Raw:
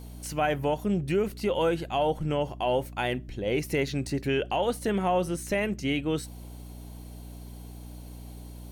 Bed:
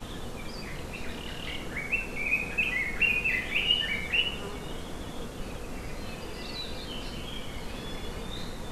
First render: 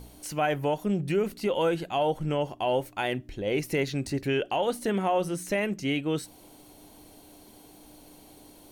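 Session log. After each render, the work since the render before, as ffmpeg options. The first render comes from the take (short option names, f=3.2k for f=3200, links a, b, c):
-af "bandreject=f=60:t=h:w=4,bandreject=f=120:t=h:w=4,bandreject=f=180:t=h:w=4,bandreject=f=240:t=h:w=4"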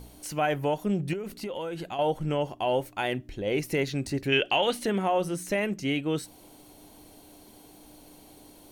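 -filter_complex "[0:a]asettb=1/sr,asplit=3[a][b][c];[a]atrim=end=1.134[d];[b]atrim=start=1.13:end=1.99,asetpts=PTS-STARTPTS,afade=t=in:d=0.004:c=qsin,afade=t=out:st=0.856:d=0.004:c=qsin,acompressor=threshold=-30dB:ratio=10:attack=3.2:release=140:knee=1:detection=peak[e];[c]atrim=start=1.986[f];[d][e]acrossfade=d=0.004:c1=hsin:c2=qsin[g];[g][f]acrossfade=d=0.004:c1=qsin:c2=hsin,asettb=1/sr,asplit=3[h][i][j];[h]atrim=end=4.324[k];[i]atrim=start=4.32:end=4.86,asetpts=PTS-STARTPTS,afade=t=in:d=0.004:c=qsin,afade=t=out:st=0.536:d=0.004:c=qsin,equalizer=f=2.8k:t=o:w=1.6:g=10.5[l];[j]atrim=start=4.856[m];[k][l]acrossfade=d=0.004:c1=hsin:c2=qsin[n];[n][m]acrossfade=d=0.004:c1=qsin:c2=hsin"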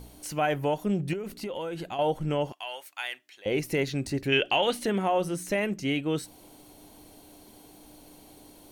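-filter_complex "[0:a]asettb=1/sr,asplit=3[a][b][c];[a]atrim=end=2.524[d];[b]atrim=start=2.52:end=3.46,asetpts=PTS-STARTPTS,afade=t=in:d=0.004:c=qsin,afade=t=out:st=0.936:d=0.004:c=qsin,highpass=1.5k[e];[c]atrim=start=3.456[f];[d][e]acrossfade=d=0.004:c1=hsin:c2=qsin[g];[g][f]acrossfade=d=0.004:c1=qsin:c2=hsin"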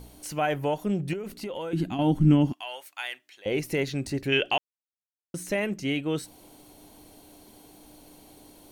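-filter_complex "[0:a]asettb=1/sr,asplit=3[a][b][c];[a]atrim=end=1.734[d];[b]atrim=start=1.73:end=2.61,asetpts=PTS-STARTPTS,afade=t=in:d=0.004:c=qsin,afade=t=out:st=0.876:d=0.004:c=qsin,lowshelf=f=370:t=q:w=3:g=9.5[e];[c]atrim=start=2.606[f];[d][e]acrossfade=d=0.004:c1=hsin:c2=qsin[g];[g][f]acrossfade=d=0.004:c1=qsin:c2=hsin,asplit=3[h][i][j];[h]atrim=end=4.58,asetpts=PTS-STARTPTS,afade=t=out:st=4.576:d=0.004:c=hsin[k];[i]atrim=start=4.58:end=5.34,asetpts=PTS-STARTPTS,volume=0[l];[j]atrim=start=5.34,asetpts=PTS-STARTPTS,afade=t=in:d=0.004:c=hsin[m];[k][l][m]concat=n=3:v=0:a=1"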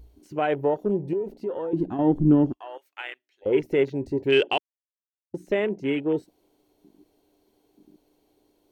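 -af "equalizer=f=160:t=o:w=0.67:g=-4,equalizer=f=400:t=o:w=0.67:g=9,equalizer=f=10k:t=o:w=0.67:g=-9,afwtdn=0.0178"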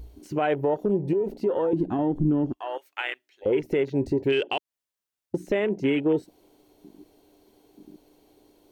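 -filter_complex "[0:a]asplit=2[a][b];[b]acompressor=threshold=-29dB:ratio=6,volume=2dB[c];[a][c]amix=inputs=2:normalize=0,alimiter=limit=-15dB:level=0:latency=1:release=171"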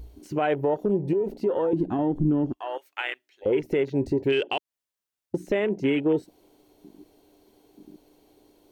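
-af anull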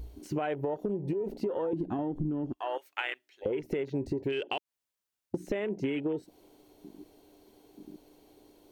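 -af "acompressor=threshold=-28dB:ratio=12"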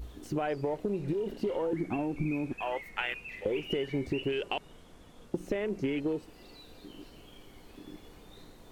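-filter_complex "[1:a]volume=-16.5dB[a];[0:a][a]amix=inputs=2:normalize=0"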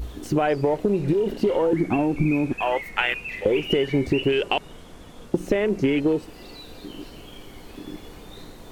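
-af "volume=10.5dB"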